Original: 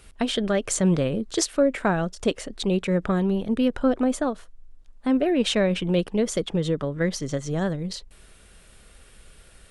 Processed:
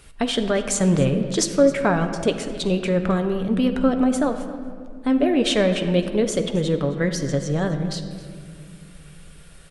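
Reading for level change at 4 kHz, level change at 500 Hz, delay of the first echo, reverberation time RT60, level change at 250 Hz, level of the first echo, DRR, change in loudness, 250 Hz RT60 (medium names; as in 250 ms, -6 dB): +3.0 dB, +3.0 dB, 265 ms, 2.2 s, +3.0 dB, -18.5 dB, 6.0 dB, +3.0 dB, 3.3 s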